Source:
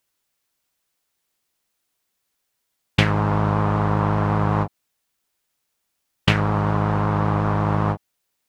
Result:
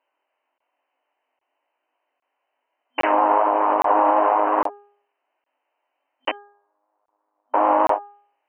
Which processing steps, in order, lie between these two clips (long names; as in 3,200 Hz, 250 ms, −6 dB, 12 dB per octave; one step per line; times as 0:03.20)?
chorus effect 1.1 Hz, delay 18.5 ms, depth 4.5 ms
0:06.31–0:07.54: noise gate −13 dBFS, range −58 dB
flat-topped bell 760 Hz +10 dB 1.1 octaves
hum removal 408.2 Hz, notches 4
brickwall limiter −13 dBFS, peak gain reduction 10 dB
brick-wall band-pass 250–3,100 Hz
regular buffer underruns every 0.81 s, samples 1,024, zero, from 0:00.58
level +6 dB